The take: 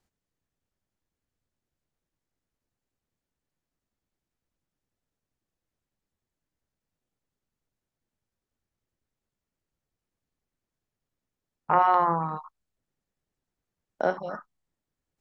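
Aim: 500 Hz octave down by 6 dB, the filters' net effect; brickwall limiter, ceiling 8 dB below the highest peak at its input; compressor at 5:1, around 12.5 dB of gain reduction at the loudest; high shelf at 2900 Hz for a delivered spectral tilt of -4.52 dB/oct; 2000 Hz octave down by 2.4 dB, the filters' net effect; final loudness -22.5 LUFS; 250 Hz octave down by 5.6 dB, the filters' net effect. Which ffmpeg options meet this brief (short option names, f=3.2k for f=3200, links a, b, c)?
-af "equalizer=f=250:t=o:g=-8,equalizer=f=500:t=o:g=-6.5,equalizer=f=2k:t=o:g=-6,highshelf=f=2.9k:g=8.5,acompressor=threshold=-33dB:ratio=5,volume=18.5dB,alimiter=limit=-9.5dB:level=0:latency=1"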